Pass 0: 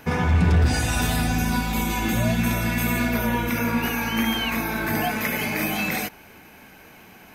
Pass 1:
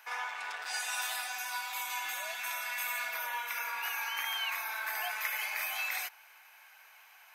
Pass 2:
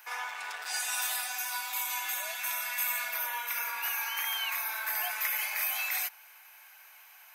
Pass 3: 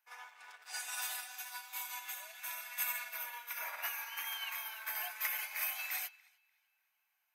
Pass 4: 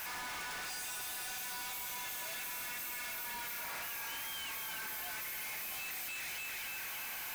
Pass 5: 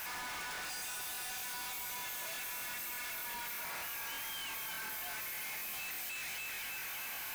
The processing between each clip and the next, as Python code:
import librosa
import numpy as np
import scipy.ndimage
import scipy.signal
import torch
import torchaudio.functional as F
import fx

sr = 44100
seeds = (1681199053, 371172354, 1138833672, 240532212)

y1 = scipy.signal.sosfilt(scipy.signal.butter(4, 860.0, 'highpass', fs=sr, output='sos'), x)
y1 = y1 * 10.0 ** (-7.5 / 20.0)
y2 = fx.high_shelf(y1, sr, hz=7800.0, db=11.0)
y3 = fx.spec_paint(y2, sr, seeds[0], shape='noise', start_s=3.6, length_s=0.27, low_hz=550.0, high_hz=2400.0, level_db=-38.0)
y3 = fx.echo_banded(y3, sr, ms=295, feedback_pct=44, hz=2800.0, wet_db=-7.0)
y3 = fx.upward_expand(y3, sr, threshold_db=-45.0, expansion=2.5)
y3 = y3 * 10.0 ** (-3.5 / 20.0)
y4 = np.sign(y3) * np.sqrt(np.mean(np.square(y3)))
y4 = y4 * 10.0 ** (1.0 / 20.0)
y5 = fx.buffer_crackle(y4, sr, first_s=0.53, period_s=0.12, block=1024, kind='repeat')